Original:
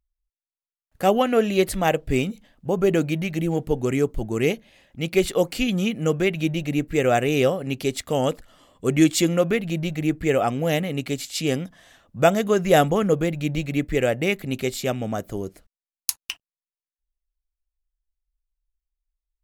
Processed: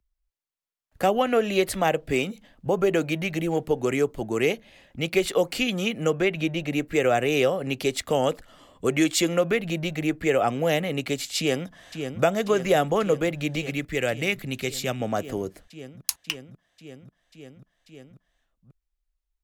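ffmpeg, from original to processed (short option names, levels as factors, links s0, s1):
-filter_complex "[0:a]asettb=1/sr,asplit=3[s0][s1][s2];[s0]atrim=end=6.104[s3];[s1]atrim=start=6.1:end=6.72,asetpts=PTS-STARTPTS,afade=t=in:d=0.004:c=qsin,afade=t=out:st=0.616:d=0.004:c=qsin,highshelf=f=4900:g=-6.5[s4];[s2]atrim=start=6.716[s5];[s3][s4]acrossfade=d=0.004:c1=hsin:c2=qsin[s6];[s6][s5]acrossfade=d=0.004:c1=qsin:c2=hsin,asplit=2[s7][s8];[s8]afade=t=in:st=11.38:d=0.01,afade=t=out:st=12.22:d=0.01,aecho=0:1:540|1080|1620|2160|2700|3240|3780|4320|4860|5400|5940|6480:0.298538|0.253758|0.215694|0.18334|0.155839|0.132463|0.112594|0.0957045|0.0813488|0.0691465|0.0587745|0.0499584[s9];[s7][s9]amix=inputs=2:normalize=0,asettb=1/sr,asplit=3[s10][s11][s12];[s10]atrim=end=13.704[s13];[s11]atrim=start=13.7:end=15,asetpts=PTS-STARTPTS,afade=t=in:d=0.004:c=qsin,afade=t=out:st=1.296:d=0.004:c=qsin,equalizer=f=500:w=0.42:g=-7[s14];[s12]atrim=start=14.996[s15];[s13][s14]acrossfade=d=0.004:c1=hsin:c2=qsin[s16];[s16][s15]acrossfade=d=0.004:c1=qsin:c2=hsin,highshelf=f=5700:g=-4.5,acrossover=split=100|370[s17][s18][s19];[s17]acompressor=threshold=0.00316:ratio=4[s20];[s18]acompressor=threshold=0.0178:ratio=4[s21];[s19]acompressor=threshold=0.0794:ratio=4[s22];[s20][s21][s22]amix=inputs=3:normalize=0,volume=1.41"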